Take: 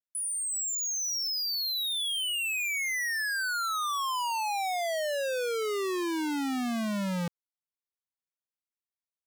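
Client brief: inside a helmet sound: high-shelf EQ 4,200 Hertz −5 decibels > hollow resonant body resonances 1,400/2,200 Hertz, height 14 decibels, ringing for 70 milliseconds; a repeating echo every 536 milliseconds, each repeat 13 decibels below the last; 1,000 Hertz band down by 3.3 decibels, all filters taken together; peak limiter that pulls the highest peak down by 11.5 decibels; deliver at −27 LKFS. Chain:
parametric band 1,000 Hz −4 dB
brickwall limiter −40 dBFS
high-shelf EQ 4,200 Hz −5 dB
repeating echo 536 ms, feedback 22%, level −13 dB
hollow resonant body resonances 1,400/2,200 Hz, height 14 dB, ringing for 70 ms
level +13.5 dB

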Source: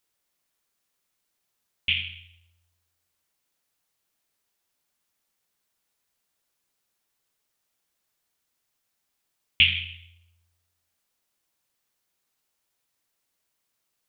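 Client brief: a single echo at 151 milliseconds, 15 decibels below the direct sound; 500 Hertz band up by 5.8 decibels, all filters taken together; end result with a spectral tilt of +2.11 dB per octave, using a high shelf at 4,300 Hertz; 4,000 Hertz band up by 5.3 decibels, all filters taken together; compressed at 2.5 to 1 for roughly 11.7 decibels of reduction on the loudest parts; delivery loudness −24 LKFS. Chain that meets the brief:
parametric band 500 Hz +7.5 dB
parametric band 4,000 Hz +6 dB
high-shelf EQ 4,300 Hz +4 dB
downward compressor 2.5 to 1, threshold −26 dBFS
single-tap delay 151 ms −15 dB
level +5 dB

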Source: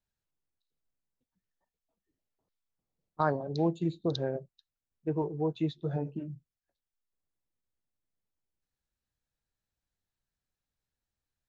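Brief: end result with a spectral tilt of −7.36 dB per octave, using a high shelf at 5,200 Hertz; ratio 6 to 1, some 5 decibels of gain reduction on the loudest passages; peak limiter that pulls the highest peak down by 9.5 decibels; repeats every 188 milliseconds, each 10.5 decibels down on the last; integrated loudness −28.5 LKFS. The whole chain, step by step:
high-shelf EQ 5,200 Hz +5 dB
downward compressor 6 to 1, threshold −29 dBFS
brickwall limiter −26 dBFS
repeating echo 188 ms, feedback 30%, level −10.5 dB
level +9.5 dB

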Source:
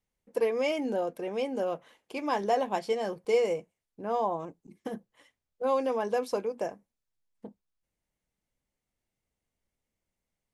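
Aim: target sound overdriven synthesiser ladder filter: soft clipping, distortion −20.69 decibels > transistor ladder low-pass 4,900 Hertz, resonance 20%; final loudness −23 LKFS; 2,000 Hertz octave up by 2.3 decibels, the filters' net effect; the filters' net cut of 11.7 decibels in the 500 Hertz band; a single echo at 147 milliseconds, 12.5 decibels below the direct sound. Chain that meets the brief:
parametric band 500 Hz −8 dB
parametric band 2,000 Hz +8 dB
single-tap delay 147 ms −12.5 dB
soft clipping −21 dBFS
transistor ladder low-pass 4,900 Hz, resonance 20%
level +16.5 dB

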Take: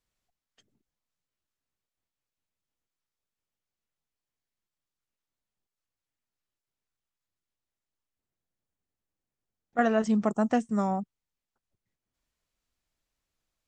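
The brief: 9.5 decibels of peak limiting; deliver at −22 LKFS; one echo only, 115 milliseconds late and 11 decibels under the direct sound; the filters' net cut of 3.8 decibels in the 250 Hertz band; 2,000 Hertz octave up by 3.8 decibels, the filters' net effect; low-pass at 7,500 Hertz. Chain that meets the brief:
low-pass filter 7,500 Hz
parametric band 250 Hz −4.5 dB
parametric band 2,000 Hz +5 dB
brickwall limiter −20 dBFS
single-tap delay 115 ms −11 dB
level +9.5 dB

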